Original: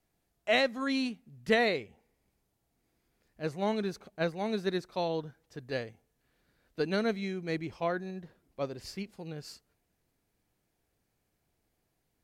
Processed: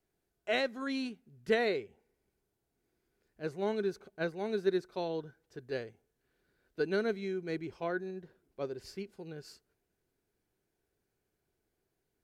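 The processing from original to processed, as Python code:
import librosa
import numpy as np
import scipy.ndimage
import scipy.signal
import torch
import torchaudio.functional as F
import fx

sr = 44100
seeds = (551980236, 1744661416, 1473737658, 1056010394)

y = fx.small_body(x, sr, hz=(390.0, 1500.0), ring_ms=35, db=10)
y = y * 10.0 ** (-6.0 / 20.0)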